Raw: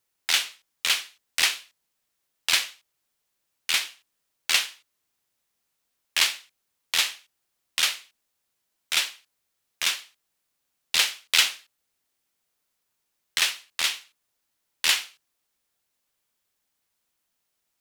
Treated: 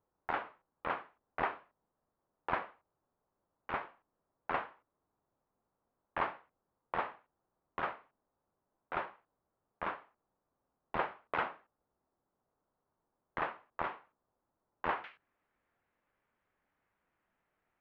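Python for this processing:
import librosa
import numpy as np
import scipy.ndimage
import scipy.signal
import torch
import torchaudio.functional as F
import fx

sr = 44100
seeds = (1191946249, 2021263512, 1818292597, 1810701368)

y = fx.lowpass(x, sr, hz=fx.steps((0.0, 1100.0), (15.04, 2000.0)), slope=24)
y = y * librosa.db_to_amplitude(5.5)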